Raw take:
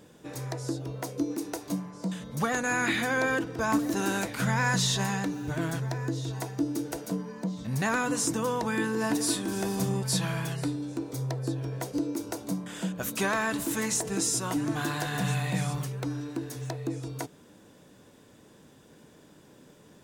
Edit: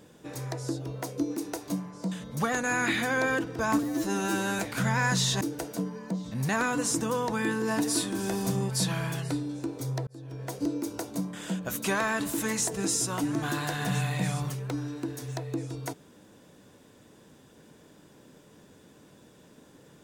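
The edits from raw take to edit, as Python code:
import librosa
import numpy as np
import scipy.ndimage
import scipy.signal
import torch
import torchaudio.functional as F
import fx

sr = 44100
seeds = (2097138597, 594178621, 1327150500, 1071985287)

y = fx.edit(x, sr, fx.stretch_span(start_s=3.83, length_s=0.38, factor=2.0),
    fx.cut(start_s=5.03, length_s=1.71),
    fx.fade_in_span(start_s=11.4, length_s=0.52), tone=tone)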